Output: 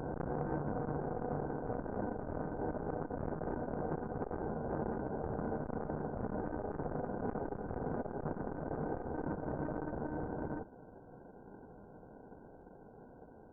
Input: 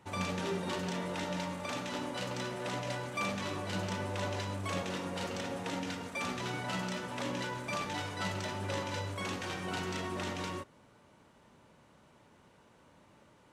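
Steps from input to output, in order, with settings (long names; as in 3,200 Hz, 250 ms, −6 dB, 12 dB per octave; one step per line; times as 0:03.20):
high-pass filter 190 Hz 12 dB per octave
in parallel at −2.5 dB: downward compressor 16 to 1, threshold −51 dBFS, peak gain reduction 20.5 dB
on the sum: phase-vocoder pitch shift with formants kept −3.5 semitones
decimation without filtering 36×
asymmetric clip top −47 dBFS, bottom −26 dBFS
linear-phase brick-wall low-pass 1,600 Hz
backwards echo 907 ms −3.5 dB
saturating transformer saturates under 430 Hz
level +4 dB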